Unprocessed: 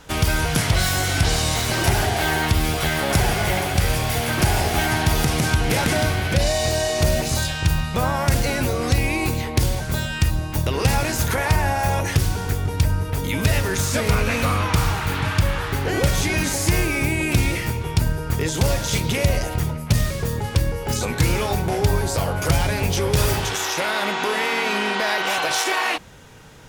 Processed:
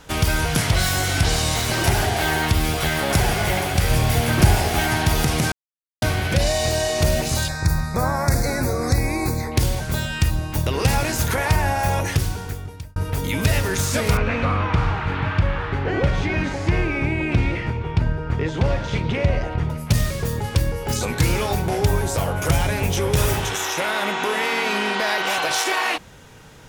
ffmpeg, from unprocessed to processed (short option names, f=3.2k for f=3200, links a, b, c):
-filter_complex "[0:a]asettb=1/sr,asplit=3[a][b][c];[a]atrim=end=3.914[d];[b]atrim=start=3.91:end=4.55,asetpts=PTS-STARTPTS,afade=t=in:d=0.004:c=qsin,afade=t=out:st=0.636:d=0.004:c=qsin,lowshelf=f=340:g=6[e];[c]atrim=start=4.546[f];[d][e]acrossfade=d=0.004:c1=hsin:c2=qsin[g];[g][f]acrossfade=d=0.004:c1=qsin:c2=hsin,asettb=1/sr,asplit=3[h][i][j];[h]atrim=end=7.484[k];[i]atrim=start=7.48:end=9.52,asetpts=PTS-STARTPTS,afade=t=in:d=0.004:c=qsin,afade=t=out:st=2.036:d=0.004:c=qsin,asuperstop=centerf=3000:order=4:qfactor=1.6[l];[j]atrim=start=9.516[m];[k][l]acrossfade=d=0.004:c1=hsin:c2=qsin[n];[n][m]acrossfade=d=0.004:c1=qsin:c2=hsin,asettb=1/sr,asplit=3[o][p][q];[o]atrim=end=14.174[r];[p]atrim=start=14.17:end=19.7,asetpts=PTS-STARTPTS,afade=t=in:d=0.004:c=qsin,afade=t=out:st=5.526:d=0.004:c=qsin,lowpass=2.5k[s];[q]atrim=start=19.696[t];[r][s]acrossfade=d=0.004:c1=hsin:c2=qsin[u];[u][t]acrossfade=d=0.004:c1=qsin:c2=hsin,asettb=1/sr,asplit=3[v][w][x];[v]atrim=end=21.854[y];[w]atrim=start=21.85:end=24.43,asetpts=PTS-STARTPTS,afade=t=in:d=0.004:c=qsin,afade=t=out:st=2.576:d=0.004:c=qsin,equalizer=f=4.6k:t=o:w=0.26:g=-7[z];[x]atrim=start=24.426[aa];[y][z]acrossfade=d=0.004:c1=hsin:c2=qsin[ab];[ab][aa]acrossfade=d=0.004:c1=qsin:c2=hsin,asplit=4[ac][ad][ae][af];[ac]atrim=end=5.52,asetpts=PTS-STARTPTS,afade=t=out:st=5.516:d=0.004:c=hsin[ag];[ad]atrim=start=5.52:end=6.02,asetpts=PTS-STARTPTS,volume=0[ah];[ae]atrim=start=6.02:end=12.96,asetpts=PTS-STARTPTS,afade=t=in:d=0.004:c=hsin,afade=t=out:st=6.01:d=0.93[ai];[af]atrim=start=12.96,asetpts=PTS-STARTPTS,afade=t=in:d=0.004:c=hsin[aj];[ag][ah][ai][aj]concat=n=4:v=0:a=1"